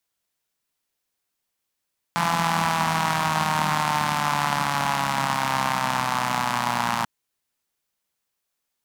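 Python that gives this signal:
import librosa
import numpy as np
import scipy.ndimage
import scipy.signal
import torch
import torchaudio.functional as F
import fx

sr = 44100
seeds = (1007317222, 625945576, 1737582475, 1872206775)

y = fx.engine_four_rev(sr, seeds[0], length_s=4.89, rpm=5100, resonances_hz=(190.0, 910.0), end_rpm=3500)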